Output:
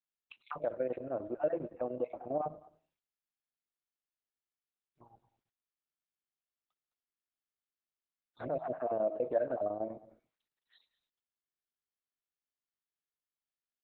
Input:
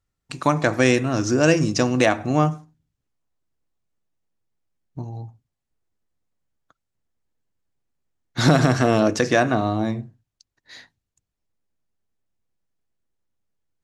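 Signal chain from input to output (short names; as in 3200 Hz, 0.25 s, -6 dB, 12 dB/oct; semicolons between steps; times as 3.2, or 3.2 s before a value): random spectral dropouts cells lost 31%; de-hum 317.9 Hz, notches 21; downsampling 11025 Hz; low shelf 130 Hz +2.5 dB; notch 2000 Hz, Q 14; chopper 10 Hz, depth 65%, duty 80%; resonator 160 Hz, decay 1.1 s, mix 30%; limiter -13.5 dBFS, peak gain reduction 7.5 dB; bell 4100 Hz -13.5 dB 0.92 oct; auto-wah 600–4300 Hz, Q 3.6, down, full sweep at -27.5 dBFS; echo 0.211 s -20 dB; Opus 8 kbps 48000 Hz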